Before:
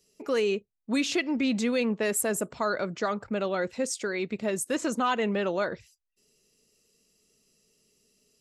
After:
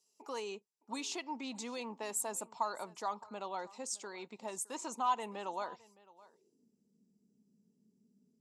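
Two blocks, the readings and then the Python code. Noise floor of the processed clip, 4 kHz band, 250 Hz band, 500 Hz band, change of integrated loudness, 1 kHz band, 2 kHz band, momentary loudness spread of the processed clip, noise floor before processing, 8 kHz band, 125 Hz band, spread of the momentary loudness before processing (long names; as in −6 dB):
−78 dBFS, −10.0 dB, −18.0 dB, −15.5 dB, −11.5 dB, −4.0 dB, −16.0 dB, 9 LU, −77 dBFS, −6.5 dB, below −15 dB, 5 LU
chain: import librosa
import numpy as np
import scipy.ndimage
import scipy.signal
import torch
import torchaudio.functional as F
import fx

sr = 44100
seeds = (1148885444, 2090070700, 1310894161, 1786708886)

y = fx.low_shelf(x, sr, hz=100.0, db=-8.5)
y = fx.filter_sweep_bandpass(y, sr, from_hz=1500.0, to_hz=210.0, start_s=5.77, end_s=6.73, q=3.5)
y = fx.curve_eq(y, sr, hz=(250.0, 390.0, 580.0, 910.0, 1500.0, 3000.0, 7200.0), db=(0, -4, -8, 5, -28, -7, 10))
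y = y + 10.0 ** (-21.5 / 20.0) * np.pad(y, (int(614 * sr / 1000.0), 0))[:len(y)]
y = y * 10.0 ** (10.0 / 20.0)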